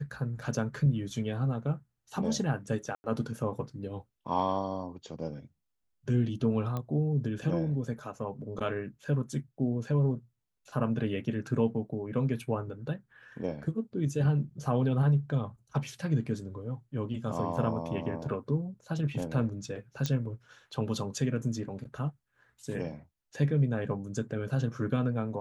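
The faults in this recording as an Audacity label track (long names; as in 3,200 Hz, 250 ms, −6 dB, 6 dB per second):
2.950000	3.040000	drop-out 90 ms
6.770000	6.770000	click −22 dBFS
17.570000	17.570000	drop-out 2.7 ms
20.060000	20.060000	click −17 dBFS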